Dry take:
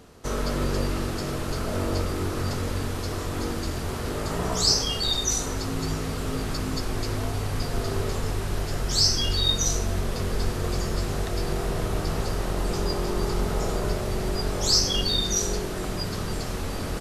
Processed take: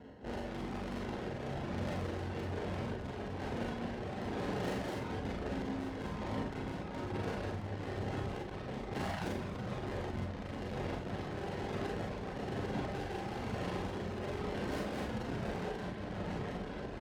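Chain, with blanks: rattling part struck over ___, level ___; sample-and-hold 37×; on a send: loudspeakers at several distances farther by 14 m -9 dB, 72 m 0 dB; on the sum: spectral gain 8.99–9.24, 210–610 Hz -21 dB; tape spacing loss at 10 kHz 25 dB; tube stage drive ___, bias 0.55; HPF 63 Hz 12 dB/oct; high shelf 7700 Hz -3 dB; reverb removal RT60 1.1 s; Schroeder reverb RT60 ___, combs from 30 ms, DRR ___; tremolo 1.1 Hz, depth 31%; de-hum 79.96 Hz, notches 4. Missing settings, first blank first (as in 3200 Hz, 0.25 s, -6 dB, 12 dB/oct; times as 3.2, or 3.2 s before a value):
-34 dBFS, -20 dBFS, 35 dB, 0.37 s, -2 dB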